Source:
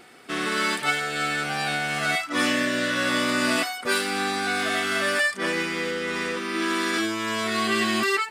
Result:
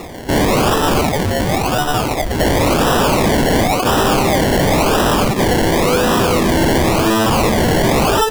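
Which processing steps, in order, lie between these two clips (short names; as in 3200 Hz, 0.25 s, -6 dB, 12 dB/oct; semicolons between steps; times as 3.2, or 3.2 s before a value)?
sine folder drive 16 dB, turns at -10.5 dBFS; 1.01–2.4 brick-wall FIR band-pass 650–2600 Hz; decimation with a swept rate 28×, swing 60% 0.94 Hz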